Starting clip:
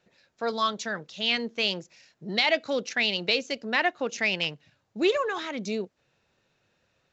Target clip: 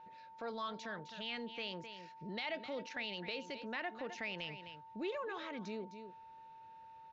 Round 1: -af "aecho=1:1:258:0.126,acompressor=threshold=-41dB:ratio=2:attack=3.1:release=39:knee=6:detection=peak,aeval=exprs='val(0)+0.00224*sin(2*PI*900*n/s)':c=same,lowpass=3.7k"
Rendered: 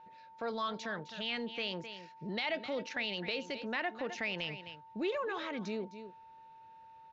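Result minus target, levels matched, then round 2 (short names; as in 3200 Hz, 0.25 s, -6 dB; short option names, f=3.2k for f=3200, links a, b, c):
compressor: peak gain reduction -5.5 dB
-af "aecho=1:1:258:0.126,acompressor=threshold=-52dB:ratio=2:attack=3.1:release=39:knee=6:detection=peak,aeval=exprs='val(0)+0.00224*sin(2*PI*900*n/s)':c=same,lowpass=3.7k"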